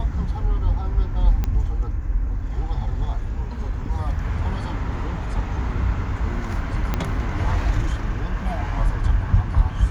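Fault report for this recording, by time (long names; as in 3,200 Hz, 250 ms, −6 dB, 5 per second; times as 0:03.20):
0:01.44: click −12 dBFS
0:06.94: click −9 dBFS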